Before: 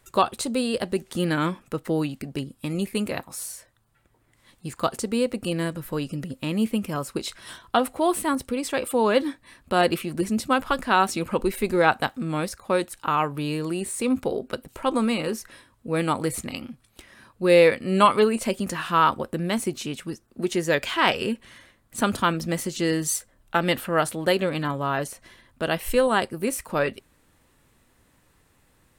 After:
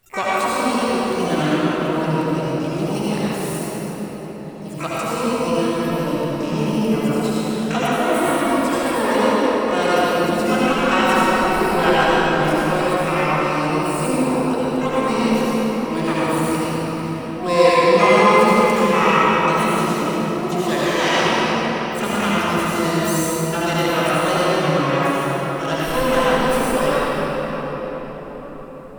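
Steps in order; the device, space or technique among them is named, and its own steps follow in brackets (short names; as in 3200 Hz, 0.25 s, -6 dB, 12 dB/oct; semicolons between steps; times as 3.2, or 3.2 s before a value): shimmer-style reverb (harmoniser +12 st -5 dB; reverb RT60 5.8 s, pre-delay 64 ms, DRR -9.5 dB); gain -5 dB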